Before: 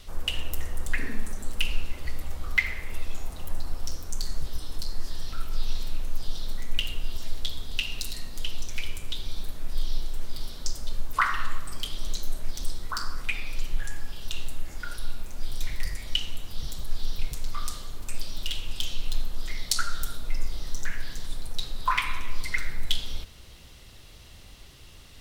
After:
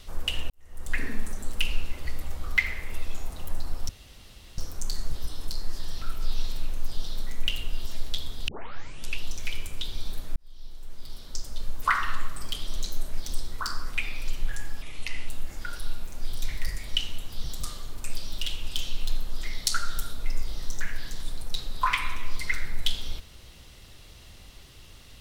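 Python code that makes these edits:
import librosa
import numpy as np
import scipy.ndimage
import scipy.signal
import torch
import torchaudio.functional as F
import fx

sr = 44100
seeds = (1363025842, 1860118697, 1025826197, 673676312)

y = fx.edit(x, sr, fx.fade_in_span(start_s=0.5, length_s=0.46, curve='qua'),
    fx.insert_room_tone(at_s=3.89, length_s=0.69),
    fx.tape_start(start_s=7.79, length_s=0.76),
    fx.fade_in_span(start_s=9.67, length_s=1.52),
    fx.speed_span(start_s=14.13, length_s=0.34, speed=0.73),
    fx.cut(start_s=16.82, length_s=0.86), tone=tone)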